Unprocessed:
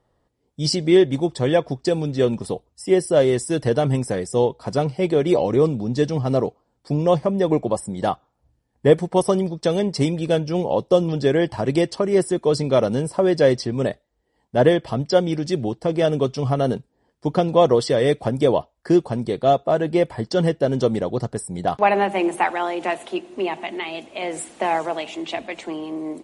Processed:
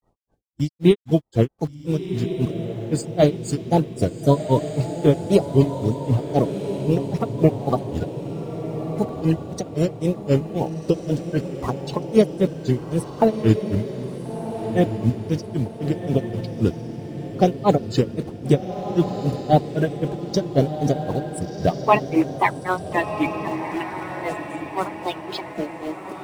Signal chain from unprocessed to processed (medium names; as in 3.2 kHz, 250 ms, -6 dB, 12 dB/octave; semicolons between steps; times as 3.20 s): coarse spectral quantiser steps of 30 dB; bass shelf 150 Hz +10 dB; in parallel at -8 dB: bit crusher 6-bit; on the sum: granulator 169 ms, grains 3.8 per s, pitch spread up and down by 3 st; echo that smears into a reverb 1403 ms, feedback 47%, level -8 dB